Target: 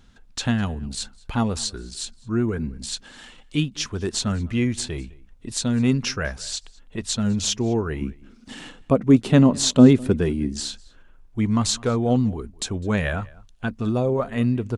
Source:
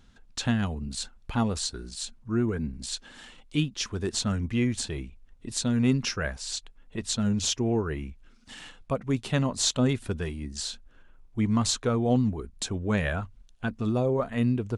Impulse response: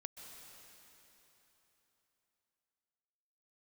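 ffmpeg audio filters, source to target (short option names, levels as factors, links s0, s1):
-filter_complex "[0:a]asettb=1/sr,asplit=3[s0][s1][s2];[s0]atrim=end=8.014[s3];[s1]atrim=start=8.01:end=10.64,asetpts=PTS-STARTPTS,afade=t=in:d=0.004:c=qsin,afade=t=out:st=2.626:d=0.004:c=qsin,equalizer=f=280:w=0.66:g=11[s4];[s2]atrim=start=10.636[s5];[s3][s4]acrossfade=d=0.004:c1=hsin:c2=qsin[s6];[s6][s5]acrossfade=d=0.004:c1=qsin:c2=hsin,asplit=2[s7][s8];[s8]adelay=204.1,volume=0.0708,highshelf=f=4000:g=-4.59[s9];[s7][s9]amix=inputs=2:normalize=0,volume=1.5"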